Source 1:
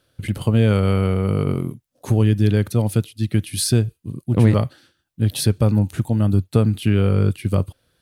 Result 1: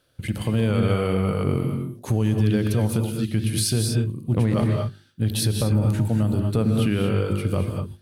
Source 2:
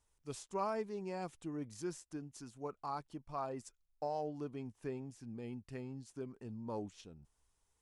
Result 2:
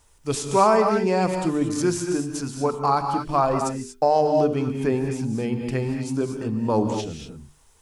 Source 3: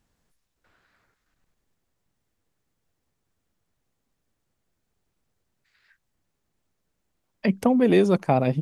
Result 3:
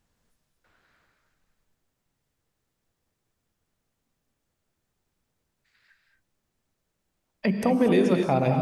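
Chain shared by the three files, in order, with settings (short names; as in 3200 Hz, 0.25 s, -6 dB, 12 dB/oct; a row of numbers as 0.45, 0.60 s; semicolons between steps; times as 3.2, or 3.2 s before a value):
notches 50/100/150/200/250/300/350/400 Hz; non-linear reverb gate 0.26 s rising, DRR 4.5 dB; limiter -10.5 dBFS; match loudness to -23 LUFS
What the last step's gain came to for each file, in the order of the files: -1.0, +20.0, -0.5 dB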